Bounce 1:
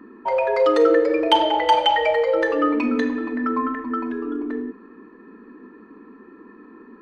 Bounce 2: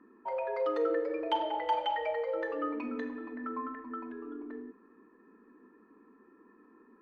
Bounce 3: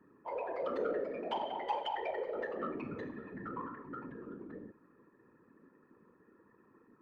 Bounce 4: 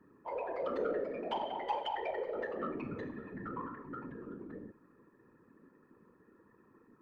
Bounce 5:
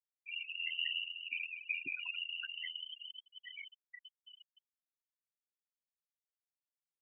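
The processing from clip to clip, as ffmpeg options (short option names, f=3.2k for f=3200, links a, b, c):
-af "lowpass=f=1.1k:p=1,lowshelf=f=460:g=-9,volume=-9dB"
-af "afftfilt=real='hypot(re,im)*cos(2*PI*random(0))':imag='hypot(re,im)*sin(2*PI*random(1))':win_size=512:overlap=0.75,asoftclip=type=tanh:threshold=-26dB,volume=1.5dB"
-af "lowshelf=f=110:g=6"
-af "aeval=exprs='val(0)*sin(2*PI*42*n/s)':c=same,afftfilt=real='re*gte(hypot(re,im),0.0355)':imag='im*gte(hypot(re,im),0.0355)':win_size=1024:overlap=0.75,lowpass=f=2.8k:t=q:w=0.5098,lowpass=f=2.8k:t=q:w=0.6013,lowpass=f=2.8k:t=q:w=0.9,lowpass=f=2.8k:t=q:w=2.563,afreqshift=-3300"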